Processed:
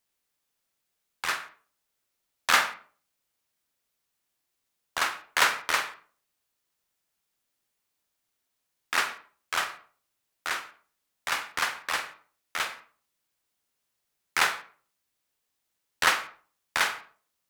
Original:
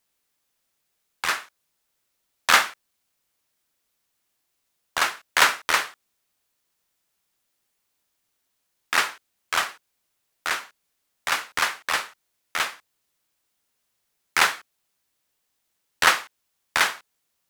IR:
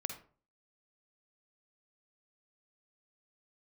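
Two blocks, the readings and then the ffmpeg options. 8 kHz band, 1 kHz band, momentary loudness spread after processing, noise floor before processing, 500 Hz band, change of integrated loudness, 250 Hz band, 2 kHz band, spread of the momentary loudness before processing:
-5.0 dB, -4.5 dB, 15 LU, -76 dBFS, -4.5 dB, -4.5 dB, -4.5 dB, -4.5 dB, 13 LU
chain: -filter_complex "[0:a]asplit=2[a][b];[1:a]atrim=start_sample=2205,lowpass=3.8k,adelay=45[c];[b][c]afir=irnorm=-1:irlink=0,volume=-8.5dB[d];[a][d]amix=inputs=2:normalize=0,volume=-5dB"

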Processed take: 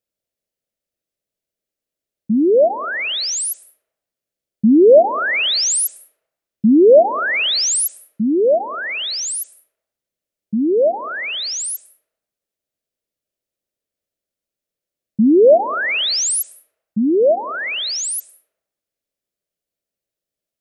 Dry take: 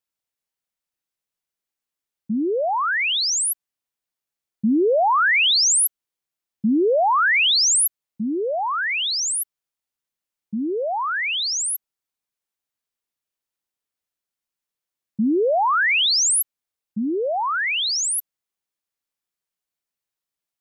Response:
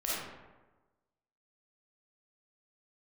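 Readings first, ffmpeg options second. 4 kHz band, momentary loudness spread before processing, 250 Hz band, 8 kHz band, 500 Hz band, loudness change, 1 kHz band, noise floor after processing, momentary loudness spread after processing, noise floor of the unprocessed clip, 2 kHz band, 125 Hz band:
0.0 dB, 13 LU, +7.5 dB, 0.0 dB, +10.0 dB, +3.5 dB, -2.0 dB, under -85 dBFS, 13 LU, under -85 dBFS, -1.0 dB, n/a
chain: -filter_complex "[0:a]lowshelf=f=760:t=q:w=3:g=6.5,bandreject=f=740:w=12,asplit=2[a][b];[1:a]atrim=start_sample=2205,adelay=111[c];[b][c]afir=irnorm=-1:irlink=0,volume=-27.5dB[d];[a][d]amix=inputs=2:normalize=0"

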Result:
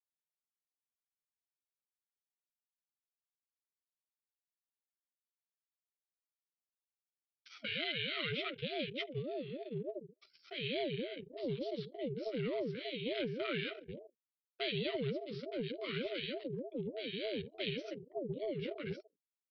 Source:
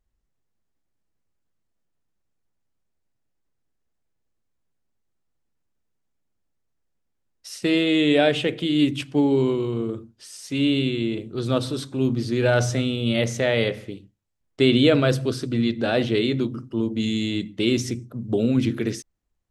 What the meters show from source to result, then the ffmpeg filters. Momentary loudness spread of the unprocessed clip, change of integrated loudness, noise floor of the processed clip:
11 LU, -17.0 dB, under -85 dBFS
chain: -filter_complex "[0:a]flanger=delay=6.8:depth=6.1:regen=0:speed=1.2:shape=sinusoidal,acrossover=split=130|3000[a][b][c];[b]acompressor=threshold=-47dB:ratio=2[d];[a][d][c]amix=inputs=3:normalize=0,aecho=1:1:73|146|219|292|365:0.0891|0.0535|0.0321|0.0193|0.0116,aresample=11025,aresample=44100,afftfilt=real='re*(1-between(b*sr/4096,210,800))':imag='im*(1-between(b*sr/4096,210,800))':win_size=4096:overlap=0.75,agate=range=-48dB:threshold=-58dB:ratio=16:detection=peak,anlmdn=0.00631,asubboost=boost=9:cutoff=160,acompressor=threshold=-20dB:ratio=10,asplit=3[e][f][g];[e]bandpass=f=530:t=q:w=8,volume=0dB[h];[f]bandpass=f=1.84k:t=q:w=8,volume=-6dB[i];[g]bandpass=f=2.48k:t=q:w=8,volume=-9dB[j];[h][i][j]amix=inputs=3:normalize=0,lowshelf=f=100:g=7.5,aeval=exprs='val(0)*sin(2*PI*410*n/s+410*0.35/3.4*sin(2*PI*3.4*n/s))':c=same,volume=13.5dB"

